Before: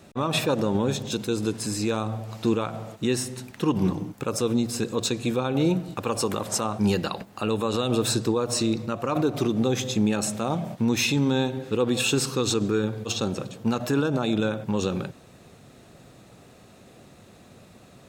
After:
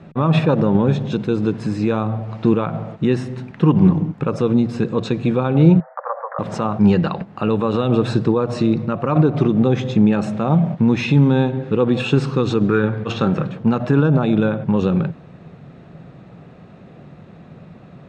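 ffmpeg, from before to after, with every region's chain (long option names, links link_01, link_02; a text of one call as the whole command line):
ffmpeg -i in.wav -filter_complex "[0:a]asettb=1/sr,asplit=3[link_01][link_02][link_03];[link_01]atrim=end=5.804[link_04];[link_02]atrim=start=5.8:end=6.39,asetpts=PTS-STARTPTS,afade=type=in:duration=0.004:curve=qsin,afade=type=out:start_time=0.586:duration=0.004:curve=qsin,acrusher=bits=9:dc=4:mix=0:aa=0.000001,asuperpass=centerf=1000:order=20:qfactor=0.71[link_05];[link_03]atrim=start=6.386[link_06];[link_04][link_05]acrossfade=duration=0.004:curve1=hsin:curve2=qsin[link_07];[link_07][link_06]acrossfade=duration=0.004:curve1=qsin:curve2=hsin,asettb=1/sr,asplit=3[link_08][link_09][link_10];[link_08]atrim=end=12.684[link_11];[link_09]atrim=start=12.68:end=13.59,asetpts=PTS-STARTPTS,afade=type=in:duration=0.004:curve=qsin,afade=type=out:start_time=0.906:duration=0.004:curve=qsin,equalizer=frequency=1600:width=0.99:gain=7.5,asplit=2[link_12][link_13];[link_13]adelay=26,volume=-13.5dB[link_14];[link_12][link_14]amix=inputs=2:normalize=0,atrim=end_sample=40131[link_15];[link_10]atrim=start=13.586[link_16];[link_11][link_15]acrossfade=duration=0.004:curve1=hsin:curve2=qsin[link_17];[link_17][link_16]acrossfade=duration=0.004:curve1=qsin:curve2=hsin,lowpass=2200,equalizer=frequency=160:width_type=o:width=0.49:gain=11,volume=6dB" out.wav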